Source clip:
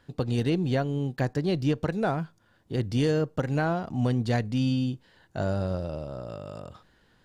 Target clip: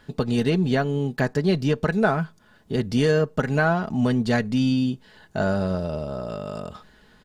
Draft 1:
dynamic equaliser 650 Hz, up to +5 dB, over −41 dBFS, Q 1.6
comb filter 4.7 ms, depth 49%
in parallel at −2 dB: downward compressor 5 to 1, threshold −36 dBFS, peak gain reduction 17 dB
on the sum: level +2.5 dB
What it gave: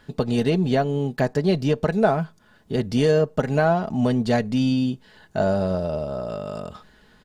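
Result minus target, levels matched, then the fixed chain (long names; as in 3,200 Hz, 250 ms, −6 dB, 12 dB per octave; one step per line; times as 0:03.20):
2,000 Hz band −4.5 dB
dynamic equaliser 1,500 Hz, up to +5 dB, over −41 dBFS, Q 1.6
comb filter 4.7 ms, depth 49%
in parallel at −2 dB: downward compressor 5 to 1, threshold −36 dBFS, peak gain reduction 15.5 dB
on the sum: level +2.5 dB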